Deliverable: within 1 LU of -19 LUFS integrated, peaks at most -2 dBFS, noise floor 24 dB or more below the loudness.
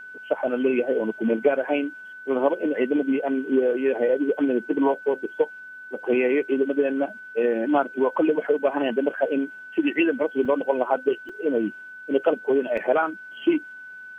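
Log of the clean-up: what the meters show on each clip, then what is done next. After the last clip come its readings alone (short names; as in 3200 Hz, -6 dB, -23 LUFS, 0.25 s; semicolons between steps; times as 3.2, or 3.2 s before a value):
dropouts 3; longest dropout 4.4 ms; steady tone 1500 Hz; tone level -38 dBFS; loudness -24.0 LUFS; peak -7.0 dBFS; loudness target -19.0 LUFS
-> interpolate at 10.45/11.29/12.77, 4.4 ms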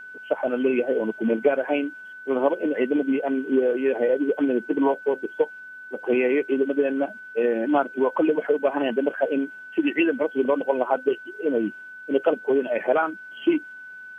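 dropouts 0; steady tone 1500 Hz; tone level -38 dBFS
-> notch 1500 Hz, Q 30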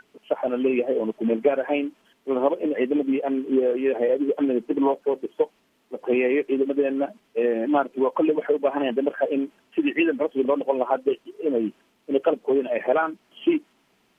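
steady tone none; loudness -24.0 LUFS; peak -7.5 dBFS; loudness target -19.0 LUFS
-> gain +5 dB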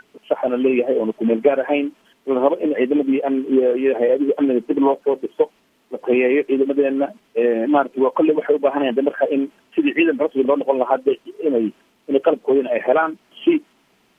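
loudness -19.0 LUFS; peak -2.5 dBFS; noise floor -61 dBFS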